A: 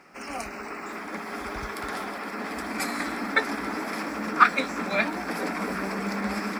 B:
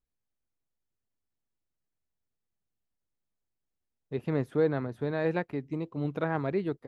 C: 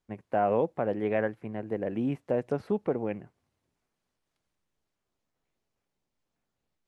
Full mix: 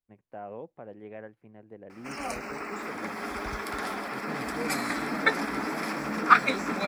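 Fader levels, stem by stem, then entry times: -0.5 dB, -12.0 dB, -15.0 dB; 1.90 s, 0.00 s, 0.00 s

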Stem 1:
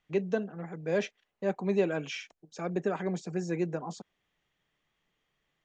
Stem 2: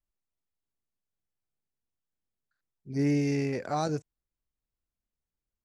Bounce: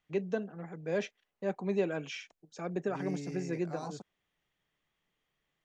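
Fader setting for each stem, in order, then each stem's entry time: -3.5 dB, -14.0 dB; 0.00 s, 0.00 s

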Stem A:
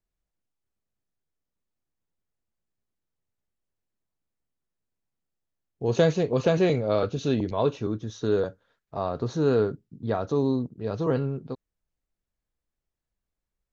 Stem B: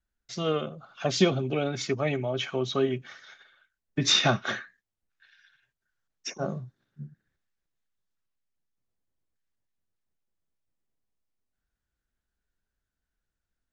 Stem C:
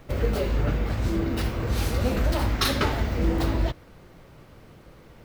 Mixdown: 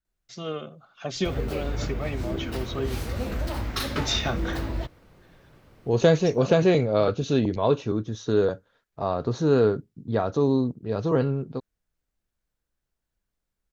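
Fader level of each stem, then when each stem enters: +2.5 dB, -5.0 dB, -5.5 dB; 0.05 s, 0.00 s, 1.15 s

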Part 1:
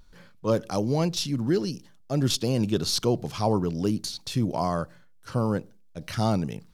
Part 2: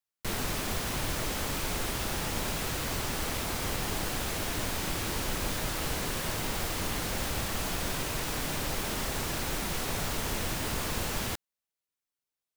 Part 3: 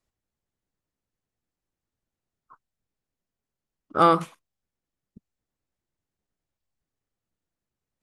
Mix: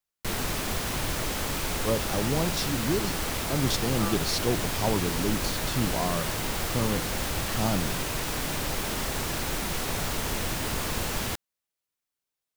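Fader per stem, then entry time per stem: -3.5 dB, +2.5 dB, -19.0 dB; 1.40 s, 0.00 s, 0.00 s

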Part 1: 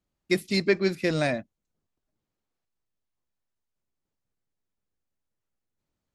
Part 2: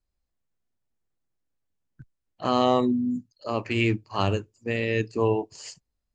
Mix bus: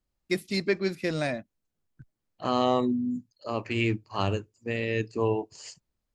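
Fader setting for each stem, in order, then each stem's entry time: -3.5 dB, -3.0 dB; 0.00 s, 0.00 s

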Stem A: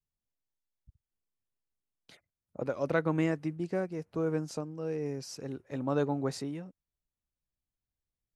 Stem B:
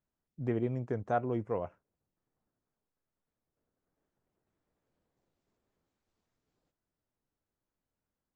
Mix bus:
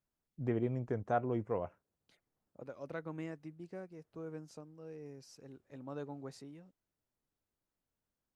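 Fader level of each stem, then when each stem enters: -14.0 dB, -2.0 dB; 0.00 s, 0.00 s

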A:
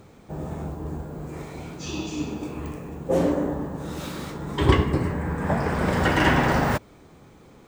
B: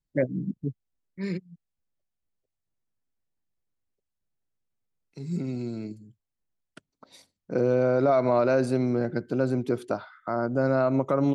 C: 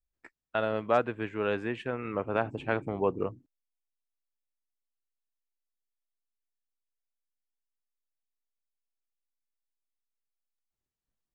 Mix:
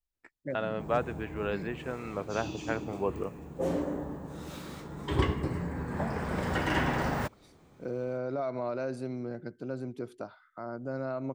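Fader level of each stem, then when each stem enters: -9.0 dB, -11.5 dB, -3.5 dB; 0.50 s, 0.30 s, 0.00 s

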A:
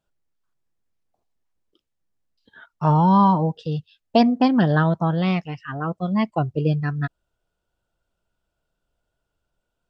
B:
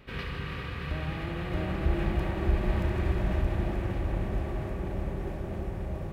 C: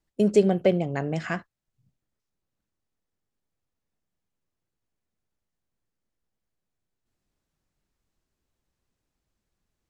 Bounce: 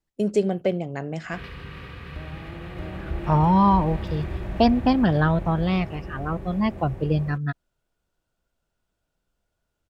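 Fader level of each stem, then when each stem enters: -2.0 dB, -3.0 dB, -2.5 dB; 0.45 s, 1.25 s, 0.00 s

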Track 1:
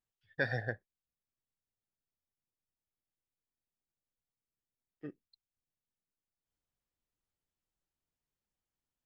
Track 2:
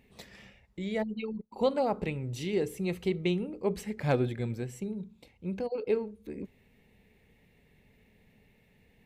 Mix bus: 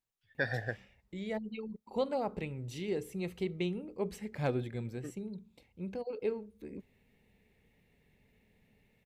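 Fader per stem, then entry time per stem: 0.0 dB, -5.5 dB; 0.00 s, 0.35 s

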